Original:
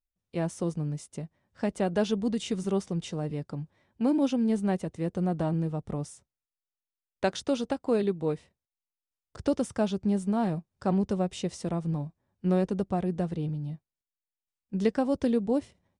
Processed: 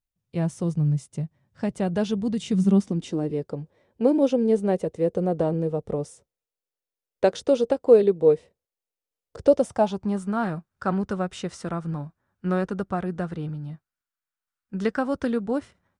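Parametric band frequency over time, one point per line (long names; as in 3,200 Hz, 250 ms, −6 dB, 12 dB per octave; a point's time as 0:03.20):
parametric band +14 dB 0.73 octaves
0:02.28 130 Hz
0:03.53 480 Hz
0:09.41 480 Hz
0:10.30 1,400 Hz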